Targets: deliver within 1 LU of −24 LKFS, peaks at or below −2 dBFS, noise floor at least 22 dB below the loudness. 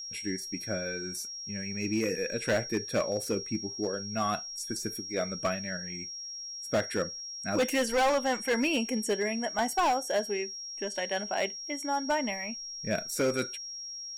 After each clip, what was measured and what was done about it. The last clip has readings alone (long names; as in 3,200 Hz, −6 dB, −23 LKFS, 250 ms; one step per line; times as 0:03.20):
share of clipped samples 1.7%; peaks flattened at −22.0 dBFS; interfering tone 5,600 Hz; level of the tone −38 dBFS; integrated loudness −31.0 LKFS; sample peak −22.0 dBFS; target loudness −24.0 LKFS
→ clipped peaks rebuilt −22 dBFS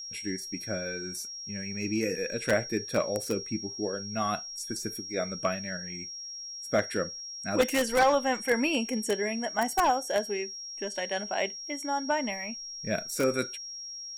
share of clipped samples 0.0%; interfering tone 5,600 Hz; level of the tone −38 dBFS
→ notch filter 5,600 Hz, Q 30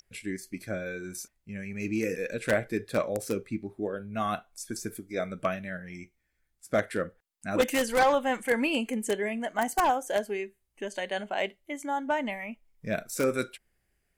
interfering tone none found; integrated loudness −30.5 LKFS; sample peak −12.5 dBFS; target loudness −24.0 LKFS
→ level +6.5 dB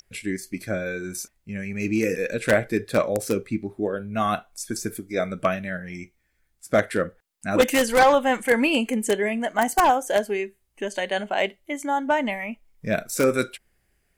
integrated loudness −24.0 LKFS; sample peak −6.0 dBFS; background noise floor −70 dBFS